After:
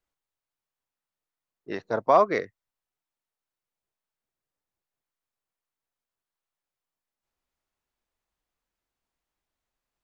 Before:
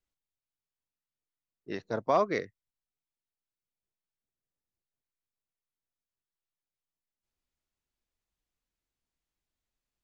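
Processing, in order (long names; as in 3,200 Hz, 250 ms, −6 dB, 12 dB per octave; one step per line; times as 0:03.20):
parametric band 920 Hz +8 dB 2.5 octaves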